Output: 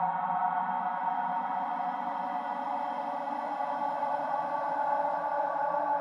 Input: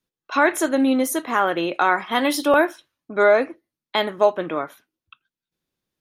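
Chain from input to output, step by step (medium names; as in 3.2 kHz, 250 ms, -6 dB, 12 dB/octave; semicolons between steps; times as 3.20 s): Paulstretch 8.6×, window 1.00 s, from 1.91 s; two resonant band-passes 370 Hz, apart 2.3 oct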